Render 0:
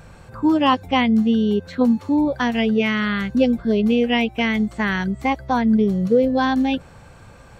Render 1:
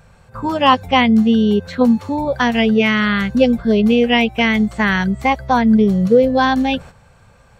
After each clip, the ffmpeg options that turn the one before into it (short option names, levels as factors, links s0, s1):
-af "agate=range=0.316:threshold=0.0141:ratio=16:detection=peak,equalizer=f=310:w=4.6:g=-13.5,volume=2"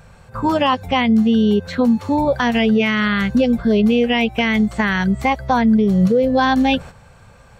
-af "alimiter=limit=0.282:level=0:latency=1:release=217,volume=1.41"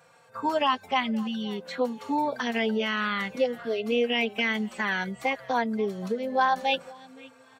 -filter_complex "[0:a]highpass=360,aecho=1:1:523|1046:0.0841|0.0244,asplit=2[s0][s1];[s1]adelay=3.7,afreqshift=-0.57[s2];[s0][s2]amix=inputs=2:normalize=1,volume=0.596"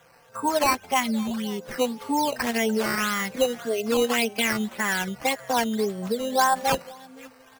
-af "acrusher=samples=9:mix=1:aa=0.000001:lfo=1:lforange=9:lforate=1.8,volume=1.33"